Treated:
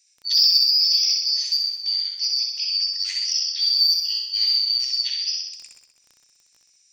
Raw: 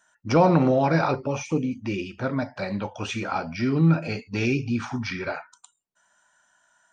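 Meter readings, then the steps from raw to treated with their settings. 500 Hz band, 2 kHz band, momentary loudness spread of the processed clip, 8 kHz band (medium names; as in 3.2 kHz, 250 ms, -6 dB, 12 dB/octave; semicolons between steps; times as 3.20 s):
under -40 dB, -11.5 dB, 8 LU, no reading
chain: four frequency bands reordered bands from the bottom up 2341; steep high-pass 2.3 kHz 36 dB/octave; treble shelf 6.3 kHz -5.5 dB; in parallel at +2 dB: compression, threshold -30 dBFS, peak gain reduction 14 dB; on the sum: crackle 12 per s -35 dBFS; saturation -9 dBFS, distortion -24 dB; on a send: flutter echo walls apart 10.9 m, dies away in 0.89 s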